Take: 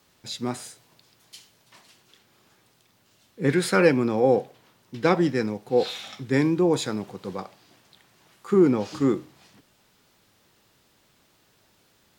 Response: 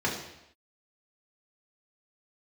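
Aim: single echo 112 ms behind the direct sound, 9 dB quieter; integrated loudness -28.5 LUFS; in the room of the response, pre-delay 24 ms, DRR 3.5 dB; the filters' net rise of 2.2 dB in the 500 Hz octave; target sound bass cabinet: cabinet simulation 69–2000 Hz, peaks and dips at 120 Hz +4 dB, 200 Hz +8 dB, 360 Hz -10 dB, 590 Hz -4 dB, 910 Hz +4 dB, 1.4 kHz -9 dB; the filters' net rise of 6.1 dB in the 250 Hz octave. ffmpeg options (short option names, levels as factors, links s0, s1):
-filter_complex "[0:a]equalizer=f=250:t=o:g=6,equalizer=f=500:t=o:g=5.5,aecho=1:1:112:0.355,asplit=2[s0][s1];[1:a]atrim=start_sample=2205,adelay=24[s2];[s1][s2]afir=irnorm=-1:irlink=0,volume=0.2[s3];[s0][s3]amix=inputs=2:normalize=0,highpass=f=69:w=0.5412,highpass=f=69:w=1.3066,equalizer=f=120:t=q:w=4:g=4,equalizer=f=200:t=q:w=4:g=8,equalizer=f=360:t=q:w=4:g=-10,equalizer=f=590:t=q:w=4:g=-4,equalizer=f=910:t=q:w=4:g=4,equalizer=f=1400:t=q:w=4:g=-9,lowpass=f=2000:w=0.5412,lowpass=f=2000:w=1.3066,volume=0.237"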